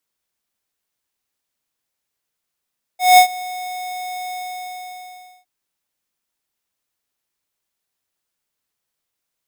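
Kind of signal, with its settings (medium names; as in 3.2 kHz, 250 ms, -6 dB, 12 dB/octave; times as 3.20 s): ADSR square 732 Hz, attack 190 ms, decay 91 ms, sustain -21.5 dB, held 1.32 s, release 1140 ms -6.5 dBFS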